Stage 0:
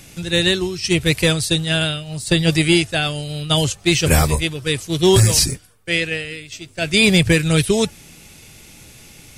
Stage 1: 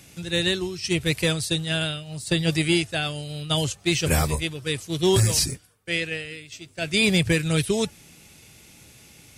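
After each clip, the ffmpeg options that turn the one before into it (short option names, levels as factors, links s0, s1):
-af "highpass=52,volume=0.473"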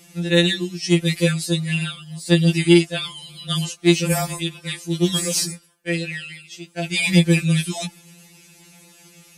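-af "afftfilt=real='re*2.83*eq(mod(b,8),0)':imag='im*2.83*eq(mod(b,8),0)':win_size=2048:overlap=0.75,volume=1.5"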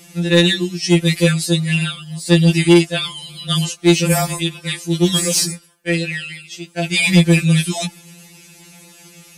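-af "acontrast=60,volume=0.891"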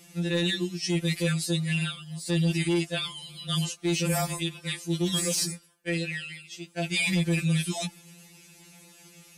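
-af "alimiter=limit=0.335:level=0:latency=1:release=16,volume=0.355"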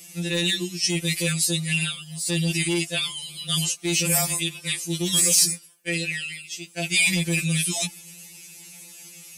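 -af "aexciter=amount=2.6:drive=3.9:freq=2100"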